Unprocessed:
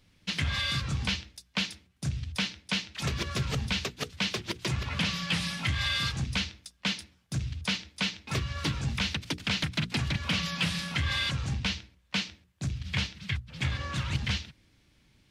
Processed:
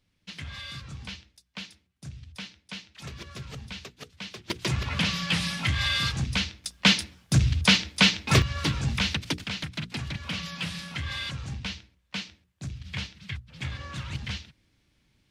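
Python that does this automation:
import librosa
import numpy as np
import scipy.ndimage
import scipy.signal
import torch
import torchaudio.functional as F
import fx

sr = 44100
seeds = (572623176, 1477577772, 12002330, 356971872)

y = fx.gain(x, sr, db=fx.steps((0.0, -9.5), (4.5, 3.0), (6.64, 11.0), (8.42, 3.5), (9.44, -4.0)))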